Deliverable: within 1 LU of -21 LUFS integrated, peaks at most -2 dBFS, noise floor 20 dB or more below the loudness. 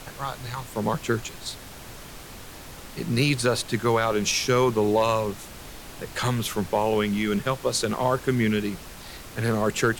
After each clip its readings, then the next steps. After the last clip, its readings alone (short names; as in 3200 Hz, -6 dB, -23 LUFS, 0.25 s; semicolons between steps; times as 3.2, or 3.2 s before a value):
noise floor -42 dBFS; noise floor target -45 dBFS; loudness -25.0 LUFS; peak -9.0 dBFS; loudness target -21.0 LUFS
-> noise print and reduce 6 dB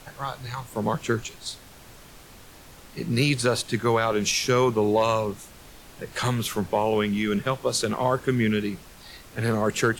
noise floor -48 dBFS; loudness -25.0 LUFS; peak -9.0 dBFS; loudness target -21.0 LUFS
-> gain +4 dB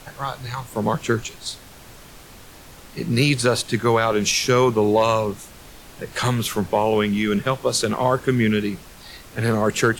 loudness -21.0 LUFS; peak -5.0 dBFS; noise floor -44 dBFS